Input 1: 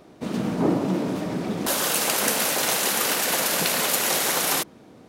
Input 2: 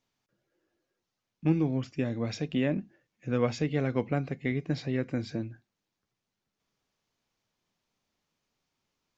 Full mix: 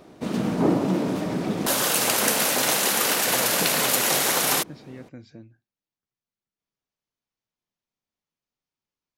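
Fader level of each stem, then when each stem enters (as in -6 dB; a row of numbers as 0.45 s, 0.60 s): +1.0 dB, -11.0 dB; 0.00 s, 0.00 s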